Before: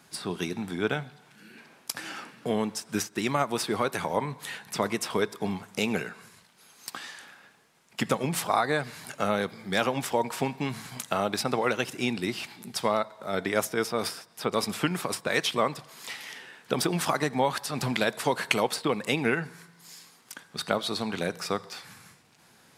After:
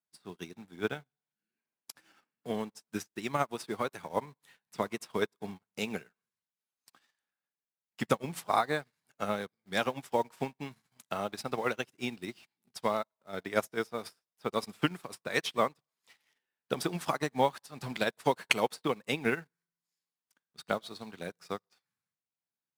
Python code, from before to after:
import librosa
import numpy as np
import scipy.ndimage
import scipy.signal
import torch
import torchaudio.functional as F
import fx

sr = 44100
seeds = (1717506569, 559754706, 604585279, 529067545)

p1 = fx.quant_dither(x, sr, seeds[0], bits=6, dither='none')
p2 = x + F.gain(torch.from_numpy(p1), -9.0).numpy()
p3 = fx.upward_expand(p2, sr, threshold_db=-45.0, expansion=2.5)
y = F.gain(torch.from_numpy(p3), -2.5).numpy()